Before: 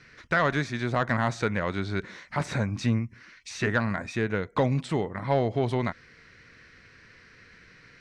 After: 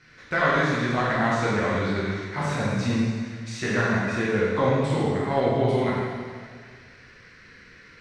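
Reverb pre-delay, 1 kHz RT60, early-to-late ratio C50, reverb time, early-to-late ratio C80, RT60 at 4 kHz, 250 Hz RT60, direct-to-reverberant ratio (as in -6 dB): 5 ms, 1.8 s, -2.5 dB, 1.8 s, -0.5 dB, 1.7 s, 1.8 s, -7.5 dB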